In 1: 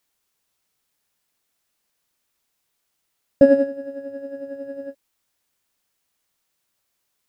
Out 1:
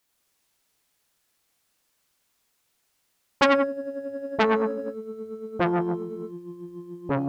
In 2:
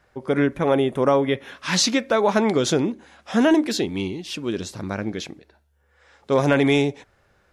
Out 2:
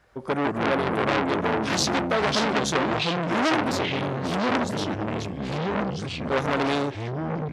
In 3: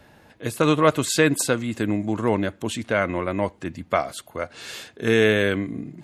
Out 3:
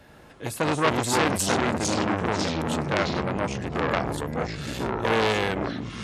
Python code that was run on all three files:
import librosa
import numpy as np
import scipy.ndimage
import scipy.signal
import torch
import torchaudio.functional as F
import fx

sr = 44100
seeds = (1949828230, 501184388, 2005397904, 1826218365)

y = fx.echo_pitch(x, sr, ms=90, semitones=-4, count=3, db_per_echo=-3.0)
y = fx.transformer_sat(y, sr, knee_hz=2500.0)